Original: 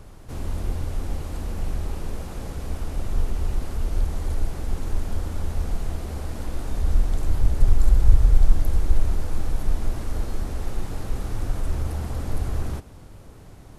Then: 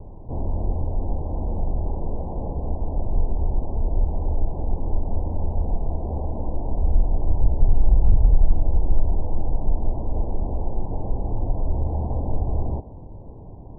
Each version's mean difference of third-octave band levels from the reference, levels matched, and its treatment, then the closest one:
14.5 dB: Butterworth low-pass 1,000 Hz 96 dB per octave
dynamic equaliser 680 Hz, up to +4 dB, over −51 dBFS, Q 1.7
in parallel at −2 dB: downward compressor 12 to 1, threshold −27 dBFS, peak gain reduction 21.5 dB
on the sum: hard clipping −7 dBFS, distortion −18 dB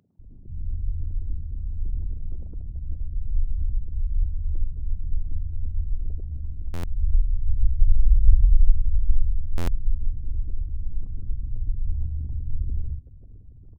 22.0 dB: spectral envelope exaggerated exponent 3
parametric band 820 Hz −4 dB 0.21 octaves
multiband delay without the direct sound highs, lows 190 ms, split 180 Hz
buffer that repeats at 0:06.73/0:09.57, samples 512, times 8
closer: first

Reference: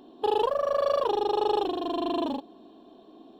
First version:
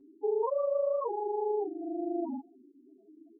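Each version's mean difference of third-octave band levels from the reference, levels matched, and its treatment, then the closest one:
13.5 dB: high-pass filter 56 Hz 12 dB per octave
notch filter 630 Hz, Q 12
spectral peaks only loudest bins 4
barber-pole flanger 7.5 ms +0.66 Hz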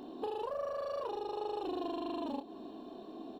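5.0 dB: notch filter 3,300 Hz, Q 8
brickwall limiter −25 dBFS, peak gain reduction 10 dB
downward compressor 6 to 1, threshold −39 dBFS, peak gain reduction 9.5 dB
double-tracking delay 28 ms −9 dB
level +3.5 dB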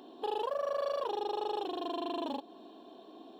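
4.0 dB: high-pass filter 440 Hz 6 dB per octave
notch filter 1,200 Hz, Q 19
in parallel at +2.5 dB: downward compressor, threshold −40 dBFS, peak gain reduction 16 dB
on the sum: brickwall limiter −21 dBFS, peak gain reduction 6.5 dB
level −4.5 dB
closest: third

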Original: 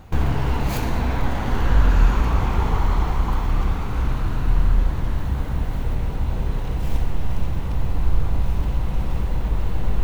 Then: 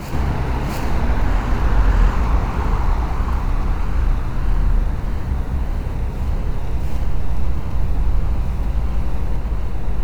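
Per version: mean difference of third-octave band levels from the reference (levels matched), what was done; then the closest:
2.0 dB: notch filter 3,300 Hz, Q 6.2
pitch vibrato 1.6 Hz 80 cents
backwards echo 684 ms −5 dB
highs frequency-modulated by the lows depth 0.49 ms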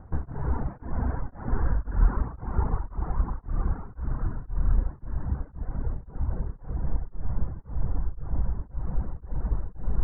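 12.5 dB: reverb reduction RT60 1 s
Butterworth low-pass 1,700 Hz 48 dB per octave
low-shelf EQ 430 Hz +4 dB
tremolo along a rectified sine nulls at 1.9 Hz
level −6 dB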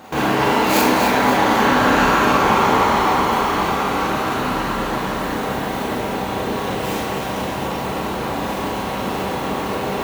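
5.5 dB: high-pass filter 300 Hz 12 dB per octave
echo with a time of its own for lows and highs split 630 Hz, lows 418 ms, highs 264 ms, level −7 dB
four-comb reverb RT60 0.33 s, combs from 28 ms, DRR −2.5 dB
level +8.5 dB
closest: first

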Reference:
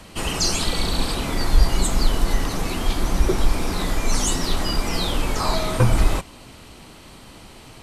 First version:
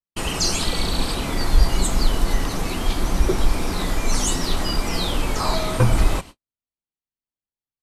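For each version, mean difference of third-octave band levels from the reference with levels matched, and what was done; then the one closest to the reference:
5.5 dB: noise gate −34 dBFS, range −60 dB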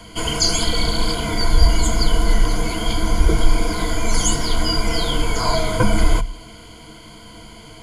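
3.0 dB: EQ curve with evenly spaced ripples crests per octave 1.8, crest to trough 16 dB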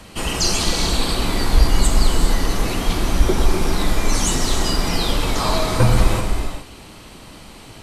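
2.0 dB: reverb whose tail is shaped and stops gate 450 ms flat, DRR 3 dB
level +1.5 dB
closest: third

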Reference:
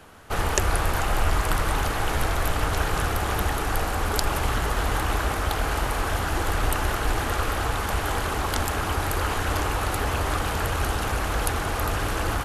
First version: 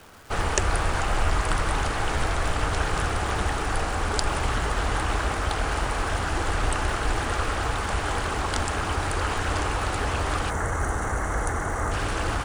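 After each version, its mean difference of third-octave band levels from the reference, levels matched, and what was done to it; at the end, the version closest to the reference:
1.5 dB: gain on a spectral selection 0:10.50–0:11.92, 2,200–5,600 Hz −14 dB
Chebyshev low-pass filter 10,000 Hz, order 10
surface crackle 560 per second −40 dBFS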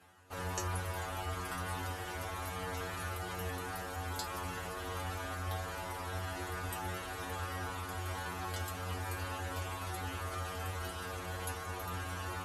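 3.0 dB: high-pass filter 59 Hz
reversed playback
upward compression, threshold −36 dBFS
reversed playback
stiff-string resonator 89 Hz, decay 0.57 s, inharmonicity 0.002
level −2 dB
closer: first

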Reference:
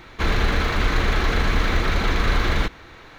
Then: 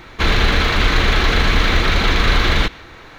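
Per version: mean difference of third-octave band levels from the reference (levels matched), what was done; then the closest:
1.5 dB: dynamic equaliser 3,400 Hz, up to +6 dB, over −43 dBFS, Q 1
level +4.5 dB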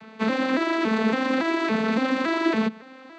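11.0 dB: vocoder with an arpeggio as carrier minor triad, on A3, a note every 281 ms
level +2.5 dB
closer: first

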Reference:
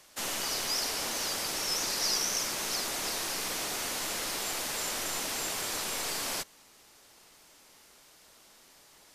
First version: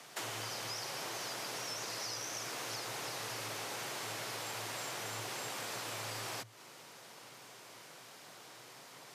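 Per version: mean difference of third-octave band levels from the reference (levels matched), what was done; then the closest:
6.5 dB: frequency shifter +110 Hz
high-shelf EQ 4,300 Hz −8.5 dB
downward compressor 6 to 1, threshold −47 dBFS, peak gain reduction 15.5 dB
level +7.5 dB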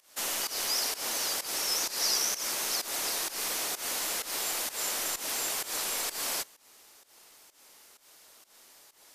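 4.0 dB: high-shelf EQ 10,000 Hz +8 dB
fake sidechain pumping 128 BPM, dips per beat 1, −17 dB, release 176 ms
bass and treble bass −9 dB, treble 0 dB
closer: second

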